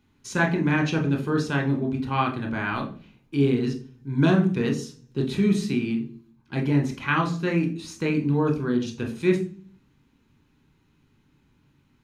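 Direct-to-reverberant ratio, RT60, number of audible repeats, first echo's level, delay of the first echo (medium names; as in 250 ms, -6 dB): 2.0 dB, 0.40 s, no echo, no echo, no echo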